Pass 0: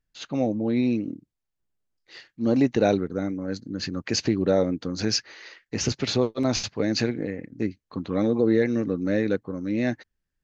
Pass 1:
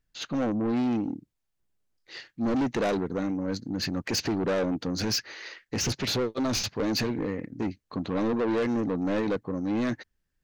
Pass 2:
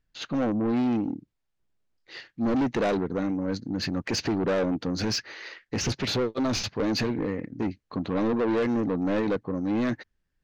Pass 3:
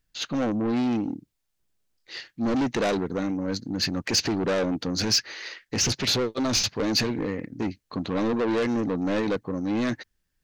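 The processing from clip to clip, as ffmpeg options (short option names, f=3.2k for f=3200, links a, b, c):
-af "asoftclip=type=tanh:threshold=-26dB,volume=3dB"
-af "adynamicsmooth=sensitivity=1:basefreq=6.5k,volume=1.5dB"
-af "highshelf=f=3.7k:g=11.5"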